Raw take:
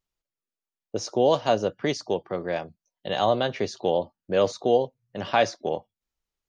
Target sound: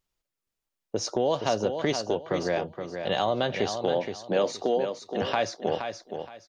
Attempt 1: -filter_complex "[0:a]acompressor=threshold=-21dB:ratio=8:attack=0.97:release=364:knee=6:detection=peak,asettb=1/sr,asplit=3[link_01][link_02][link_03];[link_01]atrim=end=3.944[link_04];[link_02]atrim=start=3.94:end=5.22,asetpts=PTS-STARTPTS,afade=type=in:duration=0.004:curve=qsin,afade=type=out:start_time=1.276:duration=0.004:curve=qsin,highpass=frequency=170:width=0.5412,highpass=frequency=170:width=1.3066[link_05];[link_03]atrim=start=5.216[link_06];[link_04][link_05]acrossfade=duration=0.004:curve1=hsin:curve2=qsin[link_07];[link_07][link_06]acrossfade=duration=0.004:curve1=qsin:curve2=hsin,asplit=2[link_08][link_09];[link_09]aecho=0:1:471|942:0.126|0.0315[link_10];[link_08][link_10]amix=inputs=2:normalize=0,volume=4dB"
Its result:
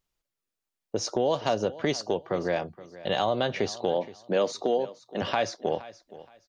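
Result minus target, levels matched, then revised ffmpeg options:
echo-to-direct −10.5 dB
-filter_complex "[0:a]acompressor=threshold=-21dB:ratio=8:attack=0.97:release=364:knee=6:detection=peak,asettb=1/sr,asplit=3[link_01][link_02][link_03];[link_01]atrim=end=3.944[link_04];[link_02]atrim=start=3.94:end=5.22,asetpts=PTS-STARTPTS,afade=type=in:duration=0.004:curve=qsin,afade=type=out:start_time=1.276:duration=0.004:curve=qsin,highpass=frequency=170:width=0.5412,highpass=frequency=170:width=1.3066[link_05];[link_03]atrim=start=5.216[link_06];[link_04][link_05]acrossfade=duration=0.004:curve1=hsin:curve2=qsin[link_07];[link_07][link_06]acrossfade=duration=0.004:curve1=qsin:curve2=hsin,asplit=2[link_08][link_09];[link_09]aecho=0:1:471|942|1413:0.422|0.105|0.0264[link_10];[link_08][link_10]amix=inputs=2:normalize=0,volume=4dB"

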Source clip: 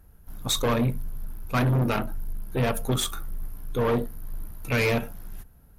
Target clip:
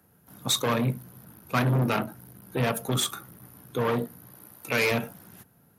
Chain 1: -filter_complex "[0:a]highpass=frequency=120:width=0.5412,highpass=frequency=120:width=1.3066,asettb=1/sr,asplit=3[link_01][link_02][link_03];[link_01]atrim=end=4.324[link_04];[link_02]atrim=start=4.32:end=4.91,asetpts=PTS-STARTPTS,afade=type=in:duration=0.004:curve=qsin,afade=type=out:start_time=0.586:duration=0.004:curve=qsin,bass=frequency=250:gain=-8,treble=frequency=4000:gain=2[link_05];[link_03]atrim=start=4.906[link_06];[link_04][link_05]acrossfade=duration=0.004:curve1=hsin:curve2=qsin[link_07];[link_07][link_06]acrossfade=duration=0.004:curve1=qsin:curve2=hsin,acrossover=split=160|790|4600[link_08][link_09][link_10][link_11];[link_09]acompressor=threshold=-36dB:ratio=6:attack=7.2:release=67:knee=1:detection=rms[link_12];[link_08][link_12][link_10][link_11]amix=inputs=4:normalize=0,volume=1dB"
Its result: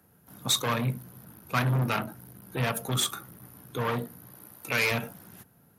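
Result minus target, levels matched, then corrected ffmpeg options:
downward compressor: peak gain reduction +7.5 dB
-filter_complex "[0:a]highpass=frequency=120:width=0.5412,highpass=frequency=120:width=1.3066,asettb=1/sr,asplit=3[link_01][link_02][link_03];[link_01]atrim=end=4.324[link_04];[link_02]atrim=start=4.32:end=4.91,asetpts=PTS-STARTPTS,afade=type=in:duration=0.004:curve=qsin,afade=type=out:start_time=0.586:duration=0.004:curve=qsin,bass=frequency=250:gain=-8,treble=frequency=4000:gain=2[link_05];[link_03]atrim=start=4.906[link_06];[link_04][link_05]acrossfade=duration=0.004:curve1=hsin:curve2=qsin[link_07];[link_07][link_06]acrossfade=duration=0.004:curve1=qsin:curve2=hsin,acrossover=split=160|790|4600[link_08][link_09][link_10][link_11];[link_09]acompressor=threshold=-27dB:ratio=6:attack=7.2:release=67:knee=1:detection=rms[link_12];[link_08][link_12][link_10][link_11]amix=inputs=4:normalize=0,volume=1dB"

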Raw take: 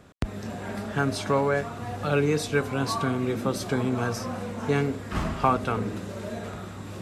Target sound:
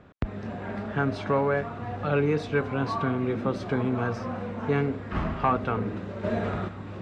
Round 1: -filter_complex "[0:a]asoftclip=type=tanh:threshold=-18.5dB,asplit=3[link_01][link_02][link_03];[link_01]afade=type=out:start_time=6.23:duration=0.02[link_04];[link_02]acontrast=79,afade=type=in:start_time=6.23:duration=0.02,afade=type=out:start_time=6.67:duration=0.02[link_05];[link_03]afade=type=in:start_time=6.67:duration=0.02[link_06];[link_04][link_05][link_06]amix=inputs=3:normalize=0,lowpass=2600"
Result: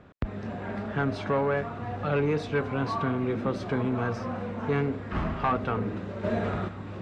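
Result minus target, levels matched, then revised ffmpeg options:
soft clipping: distortion +8 dB
-filter_complex "[0:a]asoftclip=type=tanh:threshold=-12dB,asplit=3[link_01][link_02][link_03];[link_01]afade=type=out:start_time=6.23:duration=0.02[link_04];[link_02]acontrast=79,afade=type=in:start_time=6.23:duration=0.02,afade=type=out:start_time=6.67:duration=0.02[link_05];[link_03]afade=type=in:start_time=6.67:duration=0.02[link_06];[link_04][link_05][link_06]amix=inputs=3:normalize=0,lowpass=2600"

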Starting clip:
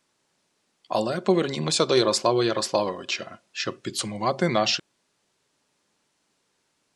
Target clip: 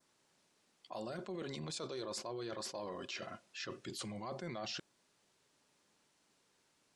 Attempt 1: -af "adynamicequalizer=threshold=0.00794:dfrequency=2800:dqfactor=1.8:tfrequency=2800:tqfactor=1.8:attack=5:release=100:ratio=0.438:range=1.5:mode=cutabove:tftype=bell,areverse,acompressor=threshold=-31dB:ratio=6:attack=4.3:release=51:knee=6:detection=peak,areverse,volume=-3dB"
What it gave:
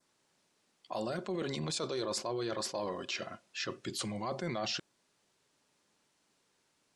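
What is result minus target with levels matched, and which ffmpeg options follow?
downward compressor: peak gain reduction −7 dB
-af "adynamicequalizer=threshold=0.00794:dfrequency=2800:dqfactor=1.8:tfrequency=2800:tqfactor=1.8:attack=5:release=100:ratio=0.438:range=1.5:mode=cutabove:tftype=bell,areverse,acompressor=threshold=-39.5dB:ratio=6:attack=4.3:release=51:knee=6:detection=peak,areverse,volume=-3dB"

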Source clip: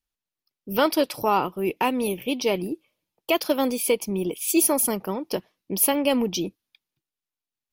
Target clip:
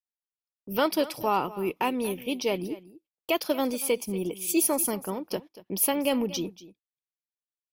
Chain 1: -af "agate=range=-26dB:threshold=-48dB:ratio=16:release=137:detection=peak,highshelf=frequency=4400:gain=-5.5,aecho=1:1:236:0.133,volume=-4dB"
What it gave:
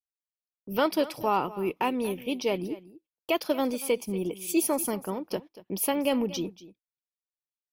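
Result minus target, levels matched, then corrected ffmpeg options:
8,000 Hz band −3.5 dB
-af "agate=range=-26dB:threshold=-48dB:ratio=16:release=137:detection=peak,aecho=1:1:236:0.133,volume=-4dB"

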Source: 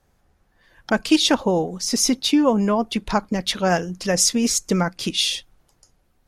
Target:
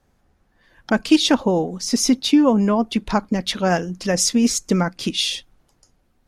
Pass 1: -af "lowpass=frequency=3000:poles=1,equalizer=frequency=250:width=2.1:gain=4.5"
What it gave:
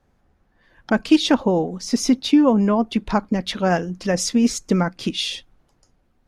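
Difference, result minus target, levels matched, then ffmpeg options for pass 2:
8,000 Hz band −5.0 dB
-af "lowpass=frequency=8900:poles=1,equalizer=frequency=250:width=2.1:gain=4.5"

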